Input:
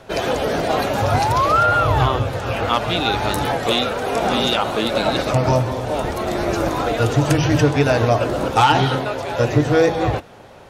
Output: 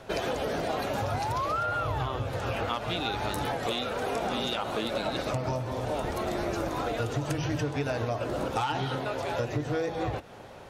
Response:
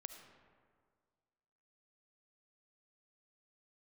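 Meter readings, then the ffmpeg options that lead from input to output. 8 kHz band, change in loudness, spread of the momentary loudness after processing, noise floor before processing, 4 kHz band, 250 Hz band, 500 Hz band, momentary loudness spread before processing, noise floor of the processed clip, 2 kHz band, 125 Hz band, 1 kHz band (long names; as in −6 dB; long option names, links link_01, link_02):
−11.5 dB, −12.5 dB, 2 LU, −41 dBFS, −12.0 dB, −12.0 dB, −12.0 dB, 7 LU, −45 dBFS, −12.0 dB, −13.0 dB, −12.5 dB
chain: -filter_complex "[0:a]acompressor=threshold=-24dB:ratio=5,asplit=2[link_01][link_02];[1:a]atrim=start_sample=2205,atrim=end_sample=3087[link_03];[link_02][link_03]afir=irnorm=-1:irlink=0,volume=-1dB[link_04];[link_01][link_04]amix=inputs=2:normalize=0,volume=-7dB"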